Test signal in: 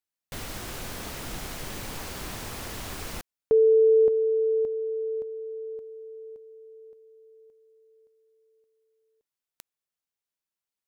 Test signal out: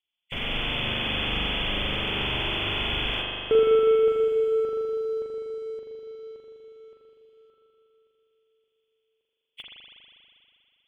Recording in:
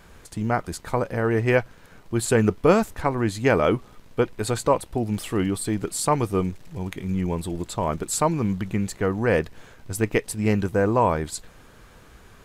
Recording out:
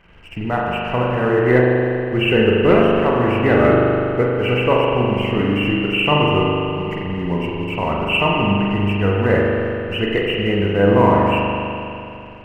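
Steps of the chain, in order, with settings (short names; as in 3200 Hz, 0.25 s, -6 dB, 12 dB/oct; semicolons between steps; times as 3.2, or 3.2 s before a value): nonlinear frequency compression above 1900 Hz 4:1; sample leveller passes 1; spring tank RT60 2.8 s, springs 40 ms, chirp 35 ms, DRR -3.5 dB; gain -2 dB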